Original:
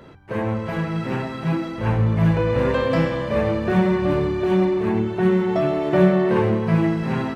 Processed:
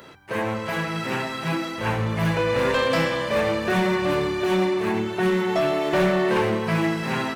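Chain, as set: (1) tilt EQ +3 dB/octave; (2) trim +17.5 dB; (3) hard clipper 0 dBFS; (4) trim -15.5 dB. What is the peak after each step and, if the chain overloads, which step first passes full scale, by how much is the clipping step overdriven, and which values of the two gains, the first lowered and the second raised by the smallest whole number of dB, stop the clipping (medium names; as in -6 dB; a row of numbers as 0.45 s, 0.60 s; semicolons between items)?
-8.5 dBFS, +9.0 dBFS, 0.0 dBFS, -15.5 dBFS; step 2, 9.0 dB; step 2 +8.5 dB, step 4 -6.5 dB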